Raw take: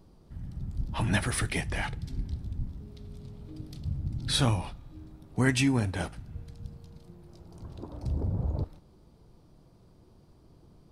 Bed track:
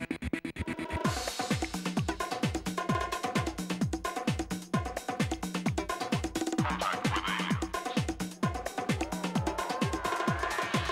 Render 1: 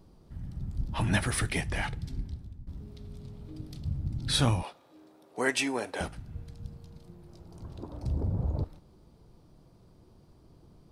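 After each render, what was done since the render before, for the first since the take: 2.07–2.67 s: fade out, to -17 dB; 4.63–6.01 s: resonant high-pass 480 Hz, resonance Q 1.6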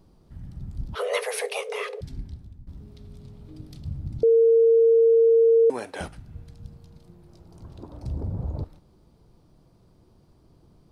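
0.95–2.01 s: frequency shift +380 Hz; 4.23–5.70 s: bleep 457 Hz -13.5 dBFS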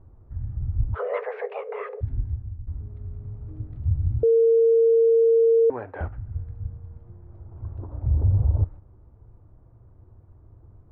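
low-pass 1.7 kHz 24 dB/octave; resonant low shelf 130 Hz +7 dB, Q 3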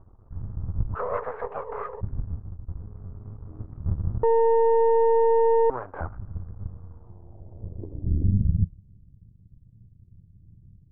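partial rectifier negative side -12 dB; low-pass sweep 1.2 kHz -> 170 Hz, 6.91–8.65 s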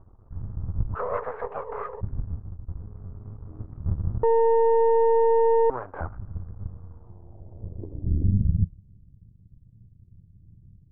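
no audible change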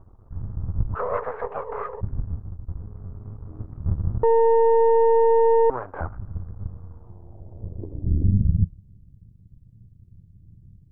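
trim +2.5 dB

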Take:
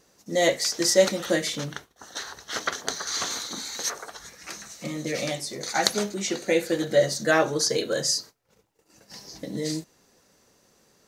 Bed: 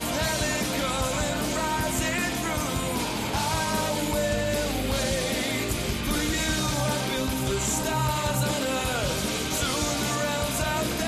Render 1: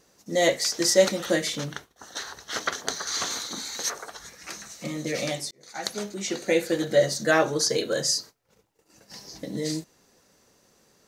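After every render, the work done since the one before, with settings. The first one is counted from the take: 5.51–6.46 s: fade in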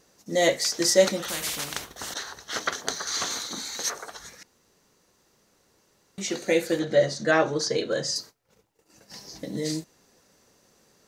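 1.28–2.14 s: spectrum-flattening compressor 4:1; 4.43–6.18 s: room tone; 6.79–8.16 s: distance through air 88 m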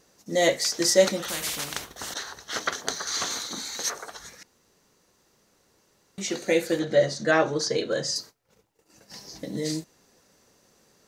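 no audible change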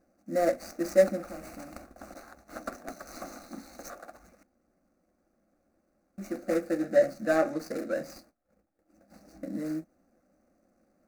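median filter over 25 samples; static phaser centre 640 Hz, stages 8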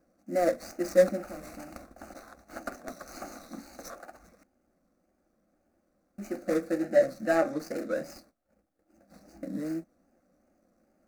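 wow and flutter 69 cents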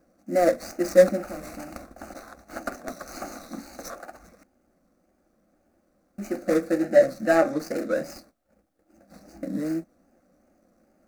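trim +5.5 dB

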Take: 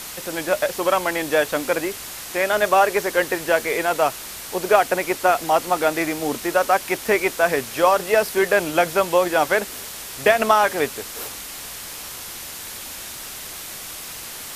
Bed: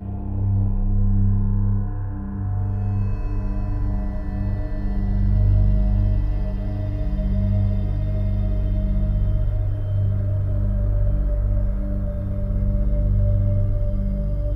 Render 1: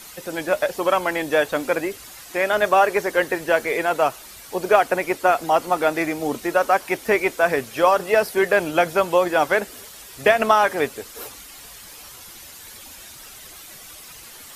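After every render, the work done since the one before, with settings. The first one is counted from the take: noise reduction 10 dB, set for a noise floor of -35 dBFS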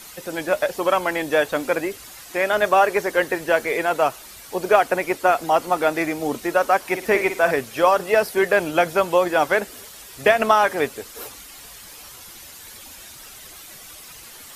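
6.80–7.51 s: flutter echo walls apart 9.5 m, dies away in 0.34 s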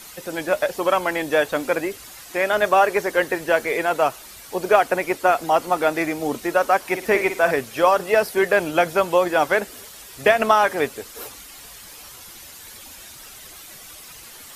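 no audible change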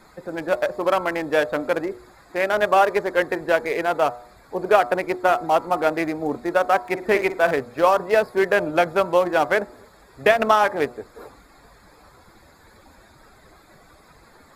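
local Wiener filter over 15 samples; de-hum 121.1 Hz, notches 11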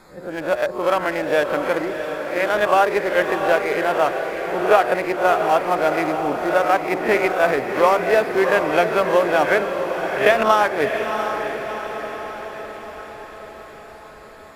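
reverse spectral sustain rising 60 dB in 0.32 s; echo that smears into a reverb 688 ms, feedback 59%, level -7 dB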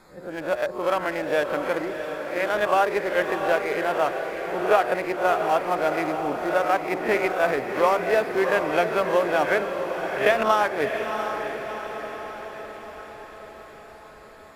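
trim -4.5 dB

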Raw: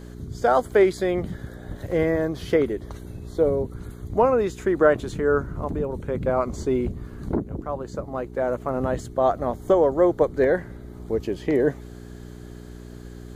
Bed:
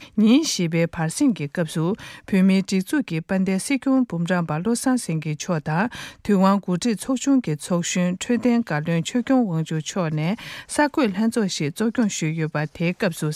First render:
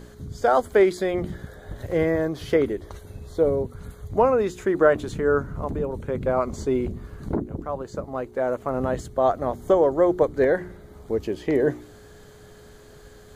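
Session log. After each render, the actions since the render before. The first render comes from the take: de-hum 60 Hz, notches 6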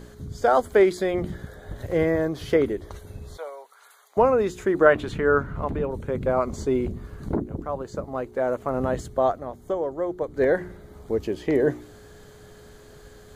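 3.37–4.17 s: high-pass 800 Hz 24 dB/octave; 4.86–5.90 s: FFT filter 460 Hz 0 dB, 2.7 kHz +7 dB, 6.3 kHz -5 dB; 9.20–10.49 s: dip -8.5 dB, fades 0.24 s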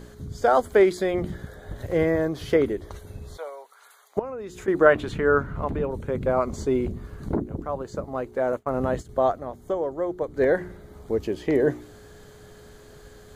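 4.19–4.68 s: compression 3:1, threshold -36 dBFS; 8.52–9.09 s: expander -30 dBFS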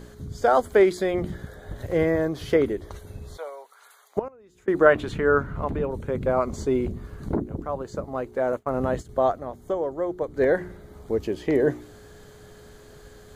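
4.28–4.72 s: gate -31 dBFS, range -17 dB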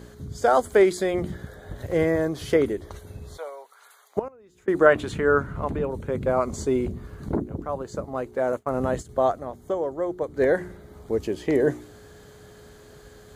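high-pass 43 Hz; dynamic bell 8.5 kHz, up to +7 dB, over -55 dBFS, Q 1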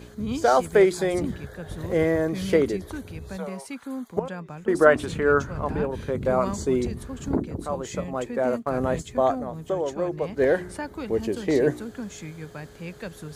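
add bed -14.5 dB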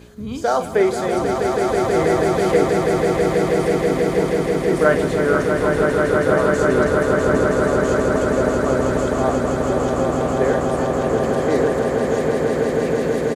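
doubling 45 ms -11 dB; echo with a slow build-up 162 ms, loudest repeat 8, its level -5.5 dB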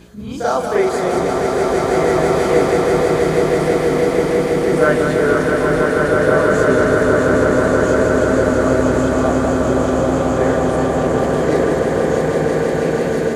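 on a send: reverse echo 39 ms -5.5 dB; on the sum: modulated delay 191 ms, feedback 73%, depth 60 cents, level -6.5 dB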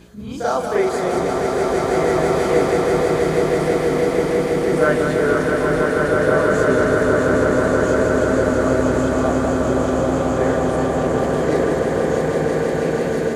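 trim -2.5 dB

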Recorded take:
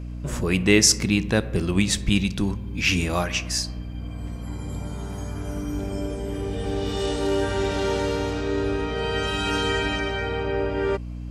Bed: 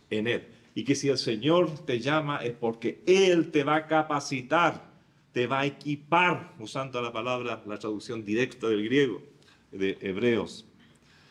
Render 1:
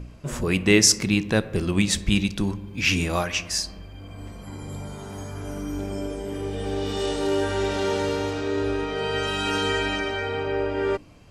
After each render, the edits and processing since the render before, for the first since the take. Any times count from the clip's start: de-hum 60 Hz, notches 5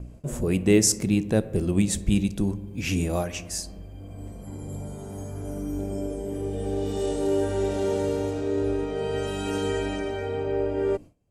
high-order bell 2.3 kHz -10.5 dB 2.9 oct; gate with hold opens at -38 dBFS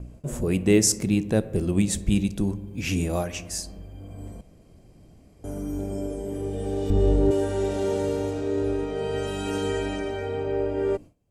4.41–5.44 s: room tone; 6.90–7.31 s: RIAA curve playback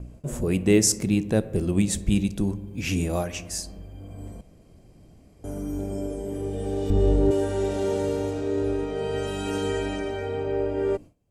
no audible change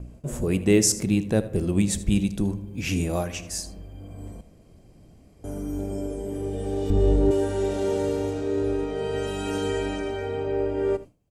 delay 79 ms -17 dB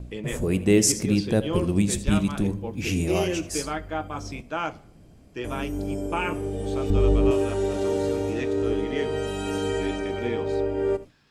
add bed -6 dB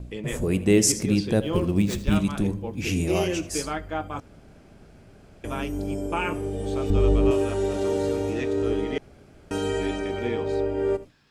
1.41–2.16 s: median filter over 5 samples; 4.20–5.44 s: room tone; 8.98–9.51 s: room tone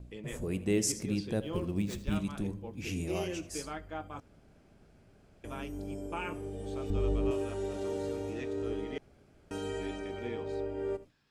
trim -10.5 dB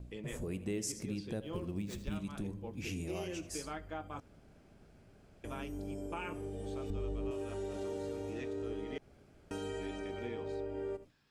compression 2.5:1, threshold -38 dBFS, peak gain reduction 9.5 dB

